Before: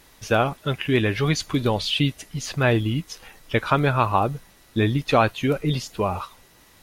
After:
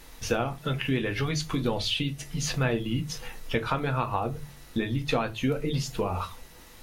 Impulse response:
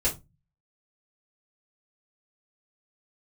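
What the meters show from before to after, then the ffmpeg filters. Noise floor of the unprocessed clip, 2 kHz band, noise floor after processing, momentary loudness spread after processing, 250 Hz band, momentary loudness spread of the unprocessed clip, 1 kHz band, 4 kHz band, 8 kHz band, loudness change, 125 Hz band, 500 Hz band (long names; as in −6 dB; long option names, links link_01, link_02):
−54 dBFS, −6.5 dB, −49 dBFS, 7 LU, −5.5 dB, 11 LU, −8.0 dB, −4.5 dB, −1.0 dB, −6.5 dB, −6.0 dB, −7.0 dB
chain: -filter_complex "[0:a]acompressor=threshold=-28dB:ratio=4,asplit=2[link_01][link_02];[1:a]atrim=start_sample=2205[link_03];[link_02][link_03]afir=irnorm=-1:irlink=0,volume=-13dB[link_04];[link_01][link_04]amix=inputs=2:normalize=0"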